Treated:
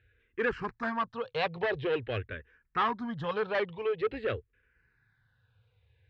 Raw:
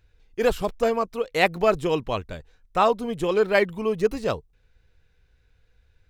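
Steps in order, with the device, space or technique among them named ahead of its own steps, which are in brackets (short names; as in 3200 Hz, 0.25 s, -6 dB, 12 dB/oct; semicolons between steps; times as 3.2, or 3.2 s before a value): barber-pole phaser into a guitar amplifier (endless phaser -0.47 Hz; soft clip -22.5 dBFS, distortion -9 dB; speaker cabinet 86–3600 Hz, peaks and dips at 110 Hz +10 dB, 190 Hz -8 dB, 300 Hz -6 dB, 660 Hz -7 dB, 1700 Hz +8 dB)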